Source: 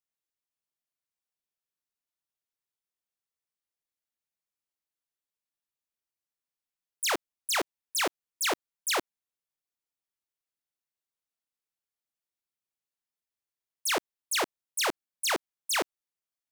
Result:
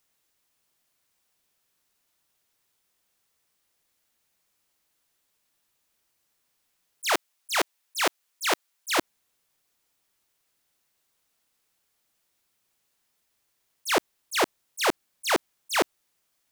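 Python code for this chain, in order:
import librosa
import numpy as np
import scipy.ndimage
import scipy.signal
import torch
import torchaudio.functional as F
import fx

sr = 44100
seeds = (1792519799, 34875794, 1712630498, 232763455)

p1 = fx.highpass(x, sr, hz=860.0, slope=6, at=(7.13, 8.99))
p2 = fx.over_compress(p1, sr, threshold_db=-36.0, ratio=-0.5)
p3 = p1 + (p2 * 10.0 ** (-1.5 / 20.0))
p4 = fx.auto_swell(p3, sr, attack_ms=120.0)
y = p4 * 10.0 ** (6.0 / 20.0)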